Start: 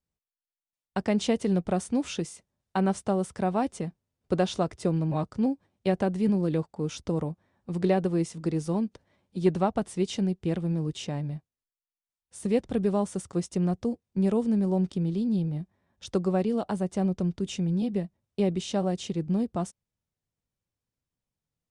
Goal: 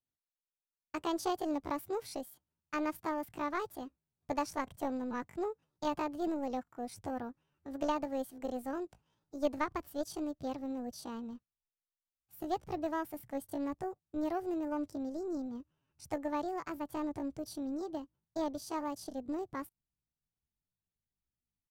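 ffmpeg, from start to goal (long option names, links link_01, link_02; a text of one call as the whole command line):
ffmpeg -i in.wav -af "aeval=exprs='0.251*(cos(1*acos(clip(val(0)/0.251,-1,1)))-cos(1*PI/2))+0.0158*(cos(2*acos(clip(val(0)/0.251,-1,1)))-cos(2*PI/2))+0.0178*(cos(3*acos(clip(val(0)/0.251,-1,1)))-cos(3*PI/2))+0.00251*(cos(4*acos(clip(val(0)/0.251,-1,1)))-cos(4*PI/2))+0.00316*(cos(7*acos(clip(val(0)/0.251,-1,1)))-cos(7*PI/2))':channel_layout=same,asubboost=boost=3:cutoff=89,asetrate=70004,aresample=44100,atempo=0.629961,volume=-7dB" out.wav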